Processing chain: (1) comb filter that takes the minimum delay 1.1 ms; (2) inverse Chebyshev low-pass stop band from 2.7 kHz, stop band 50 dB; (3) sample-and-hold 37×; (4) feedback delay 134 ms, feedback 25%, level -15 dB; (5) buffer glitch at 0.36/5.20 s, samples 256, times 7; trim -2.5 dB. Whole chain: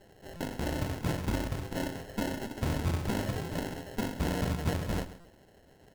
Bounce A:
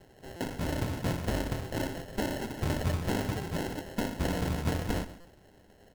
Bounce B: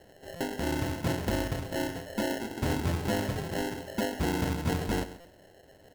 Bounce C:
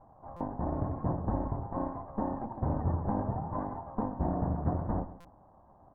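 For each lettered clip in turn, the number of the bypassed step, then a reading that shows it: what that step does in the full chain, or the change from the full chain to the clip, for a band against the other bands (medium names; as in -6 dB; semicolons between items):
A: 2, momentary loudness spread change -2 LU; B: 1, 125 Hz band -3.0 dB; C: 3, 2 kHz band -16.5 dB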